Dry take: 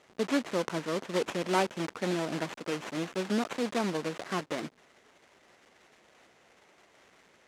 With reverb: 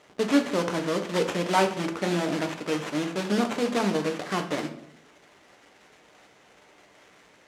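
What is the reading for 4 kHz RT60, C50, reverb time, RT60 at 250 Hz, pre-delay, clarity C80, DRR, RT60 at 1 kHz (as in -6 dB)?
0.50 s, 11.0 dB, 0.70 s, 0.95 s, 7 ms, 14.0 dB, 5.0 dB, 0.60 s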